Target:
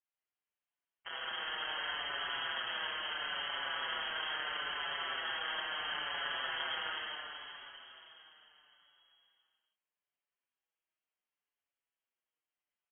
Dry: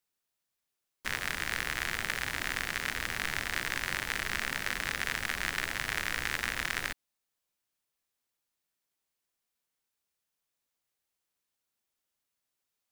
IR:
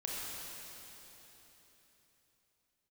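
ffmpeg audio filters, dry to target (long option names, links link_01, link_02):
-filter_complex "[0:a]acrossover=split=840|1200[link_01][link_02][link_03];[link_01]alimiter=level_in=16.5dB:limit=-24dB:level=0:latency=1,volume=-16.5dB[link_04];[link_04][link_02][link_03]amix=inputs=3:normalize=0,aeval=exprs='0.15*(cos(1*acos(clip(val(0)/0.15,-1,1)))-cos(1*PI/2))+0.0376*(cos(6*acos(clip(val(0)/0.15,-1,1)))-cos(6*PI/2))':channel_layout=same[link_05];[1:a]atrim=start_sample=2205[link_06];[link_05][link_06]afir=irnorm=-1:irlink=0,lowpass=frequency=2800:width_type=q:width=0.5098,lowpass=frequency=2800:width_type=q:width=0.6013,lowpass=frequency=2800:width_type=q:width=0.9,lowpass=frequency=2800:width_type=q:width=2.563,afreqshift=-3300,bandreject=frequency=50:width_type=h:width=6,bandreject=frequency=100:width_type=h:width=6,bandreject=frequency=150:width_type=h:width=6,asplit=2[link_07][link_08];[link_08]adelay=5.8,afreqshift=-0.74[link_09];[link_07][link_09]amix=inputs=2:normalize=1,volume=-4dB"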